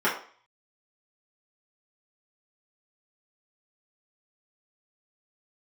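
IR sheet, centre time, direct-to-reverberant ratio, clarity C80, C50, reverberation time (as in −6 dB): 29 ms, −9.5 dB, 12.0 dB, 7.5 dB, 0.45 s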